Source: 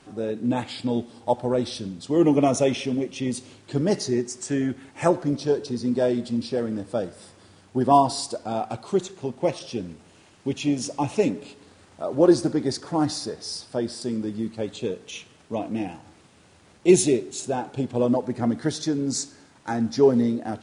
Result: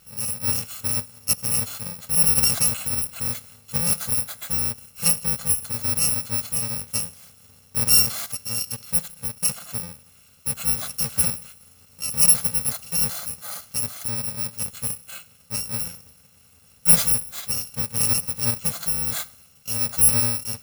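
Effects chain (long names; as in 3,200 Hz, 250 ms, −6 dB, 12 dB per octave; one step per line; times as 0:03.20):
samples in bit-reversed order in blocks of 128 samples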